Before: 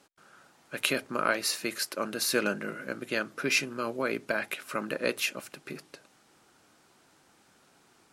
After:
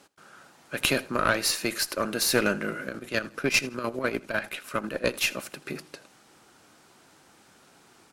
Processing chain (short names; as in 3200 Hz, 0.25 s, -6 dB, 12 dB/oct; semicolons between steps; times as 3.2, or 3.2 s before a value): one diode to ground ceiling -23 dBFS; 2.84–5.21 chopper 10 Hz, depth 60%, duty 50%; feedback echo 81 ms, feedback 27%, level -21 dB; gain +5.5 dB